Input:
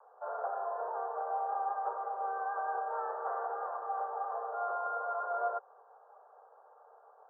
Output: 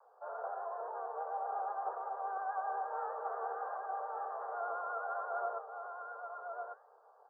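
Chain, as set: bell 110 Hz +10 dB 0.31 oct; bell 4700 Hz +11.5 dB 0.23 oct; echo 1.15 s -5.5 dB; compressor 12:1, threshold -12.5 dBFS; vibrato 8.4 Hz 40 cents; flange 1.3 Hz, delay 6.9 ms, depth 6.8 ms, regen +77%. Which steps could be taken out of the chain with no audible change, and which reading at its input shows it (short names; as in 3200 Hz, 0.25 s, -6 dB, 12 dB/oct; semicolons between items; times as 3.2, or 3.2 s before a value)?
bell 110 Hz: input band starts at 380 Hz; bell 4700 Hz: input band ends at 1600 Hz; compressor, threshold -12.5 dBFS: input peak -21.5 dBFS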